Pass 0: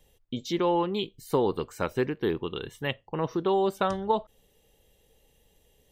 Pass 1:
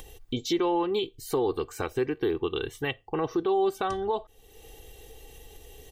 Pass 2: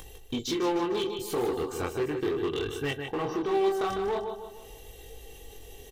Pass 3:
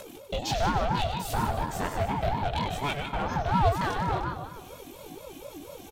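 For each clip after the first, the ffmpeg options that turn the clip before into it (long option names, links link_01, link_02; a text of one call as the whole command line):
ffmpeg -i in.wav -af "aecho=1:1:2.6:0.66,alimiter=limit=-21.5dB:level=0:latency=1:release=234,acompressor=mode=upward:threshold=-40dB:ratio=2.5,volume=3.5dB" out.wav
ffmpeg -i in.wav -filter_complex "[0:a]flanger=delay=19.5:depth=6.3:speed=0.4,aecho=1:1:152|304|456|608|760:0.376|0.165|0.0728|0.032|0.0141,asplit=2[link_01][link_02];[link_02]aeval=exprs='0.0266*(abs(mod(val(0)/0.0266+3,4)-2)-1)':channel_layout=same,volume=-5dB[link_03];[link_01][link_03]amix=inputs=2:normalize=0" out.wav
ffmpeg -i in.wav -af "aecho=1:1:96|192|288|384:0.355|0.121|0.041|0.0139,aeval=exprs='val(0)*sin(2*PI*430*n/s+430*0.35/4.2*sin(2*PI*4.2*n/s))':channel_layout=same,volume=4dB" out.wav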